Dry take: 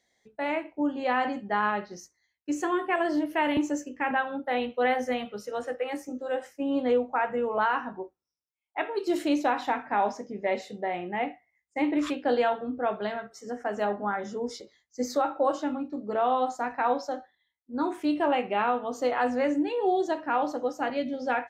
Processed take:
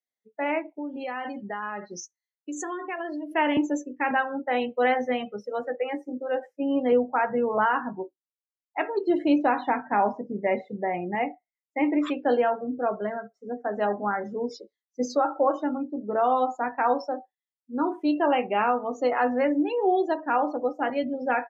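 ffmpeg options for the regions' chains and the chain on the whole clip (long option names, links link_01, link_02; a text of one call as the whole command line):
ffmpeg -i in.wav -filter_complex "[0:a]asettb=1/sr,asplit=3[link_01][link_02][link_03];[link_01]atrim=end=0.694[link_04];[link_02]atrim=start=0.69:end=3.34,asetpts=PTS-STARTPTS,afade=type=in:duration=0.004:curve=qsin,afade=type=out:start_time=2.646:duration=0.004:curve=qsin,acompressor=threshold=-34dB:ratio=4:attack=3.2:release=140:knee=1:detection=peak,highshelf=frequency=2400:gain=9[link_05];[link_03]atrim=start=3.336[link_06];[link_04][link_05]acrossfade=duration=0.004:curve1=hsin:curve2=qsin[link_07];[link_07][link_06]acrossfade=duration=0.004:curve1=qsin:curve2=hsin,asettb=1/sr,asplit=3[link_08][link_09][link_10];[link_08]atrim=end=6.924[link_11];[link_09]atrim=start=6.92:end=11.15,asetpts=PTS-STARTPTS,afade=type=in:duration=0.004:curve=qsin,afade=type=out:start_time=4.226:duration=0.004:curve=qsin,lowpass=8600,bass=frequency=250:gain=6,treble=frequency=4000:gain=-5[link_12];[link_10]atrim=start=11.146[link_13];[link_11][link_12]acrossfade=duration=0.004:curve1=hsin:curve2=qsin[link_14];[link_14][link_13]acrossfade=duration=0.004:curve1=qsin:curve2=hsin,asettb=1/sr,asplit=3[link_15][link_16][link_17];[link_15]atrim=end=12.374[link_18];[link_16]atrim=start=12.37:end=13.73,asetpts=PTS-STARTPTS,afade=type=in:duration=0.004:curve=qsin,afade=type=out:start_time=1.356:duration=0.004:curve=qsin,highshelf=frequency=2800:gain=-10,bandreject=frequency=840:width=11[link_19];[link_17]atrim=start=13.726[link_20];[link_18][link_19]acrossfade=duration=0.004:curve1=hsin:curve2=qsin[link_21];[link_21][link_20]acrossfade=duration=0.004:curve1=qsin:curve2=hsin,afftdn=noise_reduction=28:noise_floor=-39,highpass=120,volume=2.5dB" out.wav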